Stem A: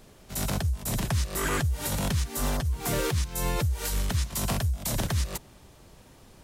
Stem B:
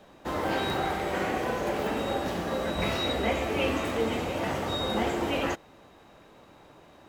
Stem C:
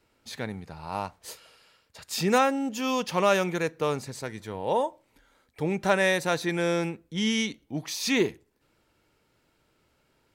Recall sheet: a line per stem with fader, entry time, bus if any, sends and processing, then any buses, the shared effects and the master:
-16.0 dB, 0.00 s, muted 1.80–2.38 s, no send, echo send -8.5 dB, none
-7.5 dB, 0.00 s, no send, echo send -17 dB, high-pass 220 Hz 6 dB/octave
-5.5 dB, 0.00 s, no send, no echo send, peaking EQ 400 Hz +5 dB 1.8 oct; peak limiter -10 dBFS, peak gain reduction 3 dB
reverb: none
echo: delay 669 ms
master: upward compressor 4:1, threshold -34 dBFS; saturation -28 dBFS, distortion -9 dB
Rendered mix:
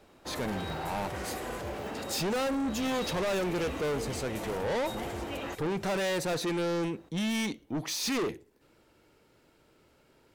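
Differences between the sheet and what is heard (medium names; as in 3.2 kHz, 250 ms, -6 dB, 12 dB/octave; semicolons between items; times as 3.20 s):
stem B: missing high-pass 220 Hz 6 dB/octave; stem C -5.5 dB -> +2.5 dB; master: missing upward compressor 4:1, threshold -34 dBFS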